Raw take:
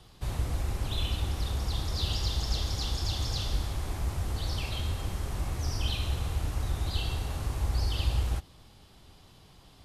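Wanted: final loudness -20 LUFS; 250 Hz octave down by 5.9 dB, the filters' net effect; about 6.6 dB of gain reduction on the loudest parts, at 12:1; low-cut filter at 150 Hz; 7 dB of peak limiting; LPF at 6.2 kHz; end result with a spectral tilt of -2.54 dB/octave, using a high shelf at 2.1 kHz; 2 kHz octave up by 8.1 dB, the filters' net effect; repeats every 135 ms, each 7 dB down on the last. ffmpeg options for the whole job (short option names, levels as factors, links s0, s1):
-af "highpass=150,lowpass=6200,equalizer=f=250:t=o:g=-7.5,equalizer=f=2000:t=o:g=8,highshelf=f=2100:g=4.5,acompressor=threshold=0.02:ratio=12,alimiter=level_in=2.37:limit=0.0631:level=0:latency=1,volume=0.422,aecho=1:1:135|270|405|540|675:0.447|0.201|0.0905|0.0407|0.0183,volume=8.41"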